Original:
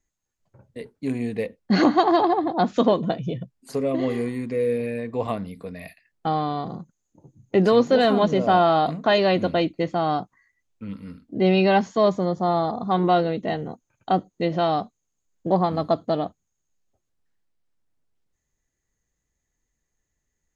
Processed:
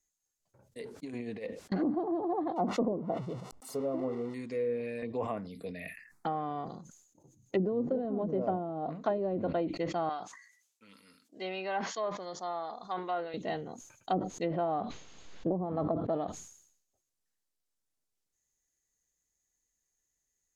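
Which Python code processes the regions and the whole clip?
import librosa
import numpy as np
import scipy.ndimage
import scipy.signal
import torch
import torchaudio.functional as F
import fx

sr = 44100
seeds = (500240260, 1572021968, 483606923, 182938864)

y = fx.chain(x, sr, fx.highpass(hz=100.0, slope=6),
    fx.over_compress(threshold_db=-28.0, ratio=-0.5),
    fx.high_shelf(hz=5000.0, db=-11.5), at=(0.79, 1.72))
y = fx.chain(y, sr, fx.crossing_spikes(level_db=-13.5),
    fx.savgol(points=65), at=(2.56, 4.34))
y = fx.chain(y, sr, fx.env_phaser(low_hz=470.0, high_hz=4200.0, full_db=-23.5),
    fx.band_squash(depth_pct=70), at=(5.02, 6.69))
y = fx.chain(y, sr, fx.highpass(hz=1200.0, slope=6),
    fx.env_lowpass_down(base_hz=1800.0, full_db=-23.0), at=(10.09, 13.34))
y = fx.chain(y, sr, fx.lowpass(hz=3800.0, slope=24),
    fx.pre_swell(db_per_s=36.0), at=(14.43, 16.13))
y = fx.env_lowpass_down(y, sr, base_hz=340.0, full_db=-14.0)
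y = fx.bass_treble(y, sr, bass_db=-6, treble_db=12)
y = fx.sustainer(y, sr, db_per_s=77.0)
y = y * 10.0 ** (-8.5 / 20.0)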